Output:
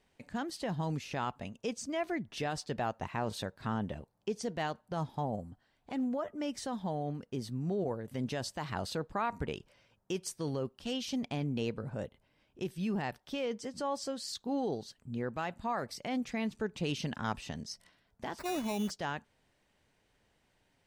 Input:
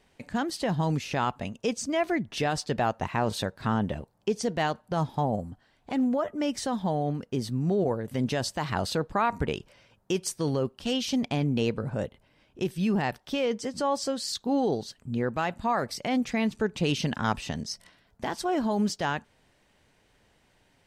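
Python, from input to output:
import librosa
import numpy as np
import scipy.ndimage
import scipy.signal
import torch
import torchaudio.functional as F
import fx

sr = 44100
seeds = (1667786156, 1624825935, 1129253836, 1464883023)

y = fx.sample_hold(x, sr, seeds[0], rate_hz=3200.0, jitter_pct=0, at=(18.38, 18.89), fade=0.02)
y = y * 10.0 ** (-8.0 / 20.0)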